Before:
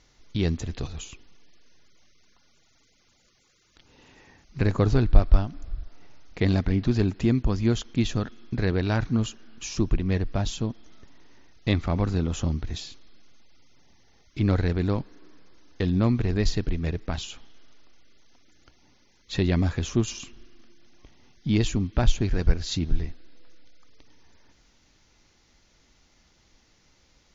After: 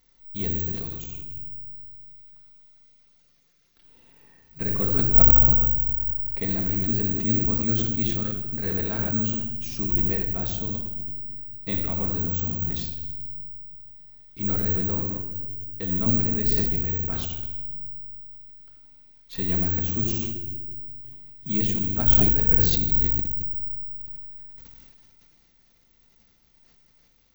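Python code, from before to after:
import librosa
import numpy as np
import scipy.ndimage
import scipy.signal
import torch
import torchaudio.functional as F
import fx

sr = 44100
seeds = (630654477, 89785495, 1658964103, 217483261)

y = fx.echo_feedback(x, sr, ms=84, feedback_pct=57, wet_db=-14.5)
y = fx.room_shoebox(y, sr, seeds[0], volume_m3=1600.0, walls='mixed', distance_m=1.6)
y = (np.kron(y[::2], np.eye(2)[0]) * 2)[:len(y)]
y = fx.sustainer(y, sr, db_per_s=23.0)
y = y * 10.0 ** (-9.5 / 20.0)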